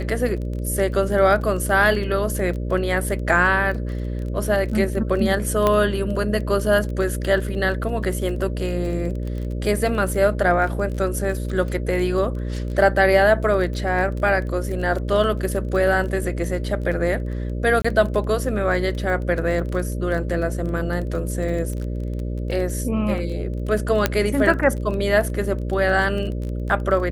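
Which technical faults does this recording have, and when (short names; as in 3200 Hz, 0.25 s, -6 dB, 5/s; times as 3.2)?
buzz 60 Hz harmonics 10 -26 dBFS
crackle 20/s -28 dBFS
5.67 pop -6 dBFS
17.82–17.84 gap 25 ms
24.06 pop -2 dBFS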